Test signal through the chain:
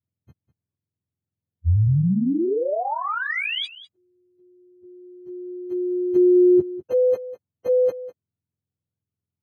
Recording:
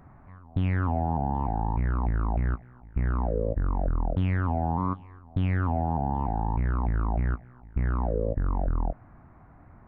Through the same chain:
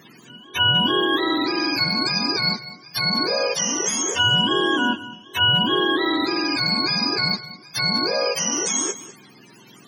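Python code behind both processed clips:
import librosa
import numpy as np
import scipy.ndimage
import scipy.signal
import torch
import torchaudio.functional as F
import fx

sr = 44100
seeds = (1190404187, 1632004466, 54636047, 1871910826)

y = fx.octave_mirror(x, sr, pivot_hz=520.0)
y = y + 10.0 ** (-16.0 / 20.0) * np.pad(y, (int(200 * sr / 1000.0), 0))[:len(y)]
y = y * 10.0 ** (8.5 / 20.0)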